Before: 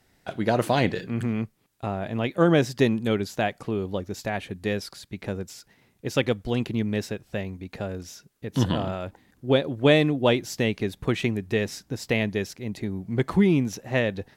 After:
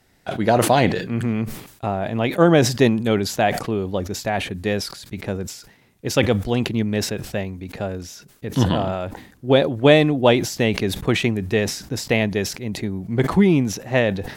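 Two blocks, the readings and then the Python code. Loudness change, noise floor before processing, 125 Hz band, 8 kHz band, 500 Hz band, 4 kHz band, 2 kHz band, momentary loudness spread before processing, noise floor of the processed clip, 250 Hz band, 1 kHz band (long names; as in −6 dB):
+5.5 dB, −65 dBFS, +5.0 dB, +10.5 dB, +5.5 dB, +6.0 dB, +5.0 dB, 15 LU, −54 dBFS, +4.5 dB, +7.5 dB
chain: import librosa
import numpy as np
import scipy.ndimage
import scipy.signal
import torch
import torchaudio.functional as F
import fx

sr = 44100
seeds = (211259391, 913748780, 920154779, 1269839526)

y = fx.dynamic_eq(x, sr, hz=750.0, q=1.9, threshold_db=-36.0, ratio=4.0, max_db=4)
y = fx.sustainer(y, sr, db_per_s=88.0)
y = y * 10.0 ** (4.0 / 20.0)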